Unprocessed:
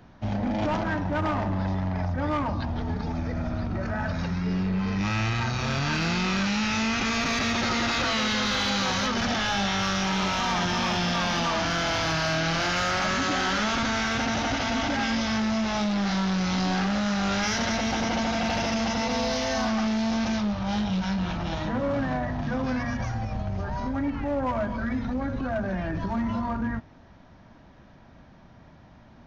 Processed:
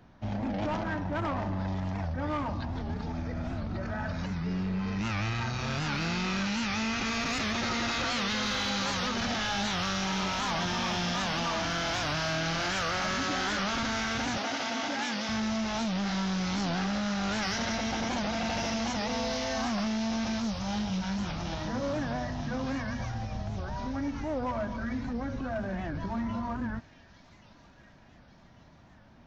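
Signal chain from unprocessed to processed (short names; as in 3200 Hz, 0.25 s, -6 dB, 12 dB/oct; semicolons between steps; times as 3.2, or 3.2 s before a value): 14.38–15.29 HPF 250 Hz 12 dB/oct; thin delay 1.138 s, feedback 53%, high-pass 3700 Hz, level -5 dB; record warp 78 rpm, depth 160 cents; gain -5 dB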